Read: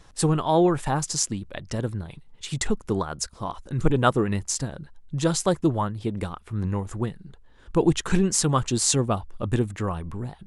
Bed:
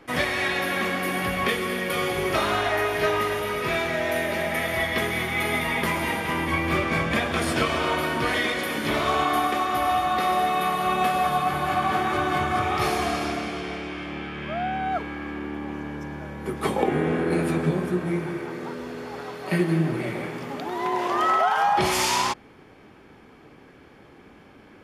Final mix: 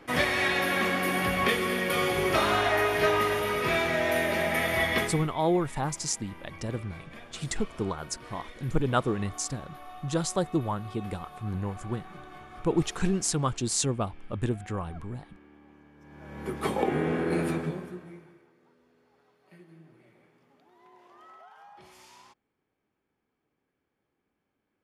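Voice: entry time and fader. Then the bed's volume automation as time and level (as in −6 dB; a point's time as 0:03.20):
4.90 s, −5.5 dB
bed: 0:04.98 −1 dB
0:05.37 −23 dB
0:15.95 −23 dB
0:16.39 −4 dB
0:17.49 −4 dB
0:18.53 −31 dB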